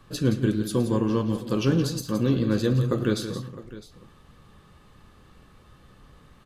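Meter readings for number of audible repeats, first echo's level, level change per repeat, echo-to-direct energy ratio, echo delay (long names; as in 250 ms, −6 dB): 3, −18.5 dB, repeats not evenly spaced, −9.0 dB, 109 ms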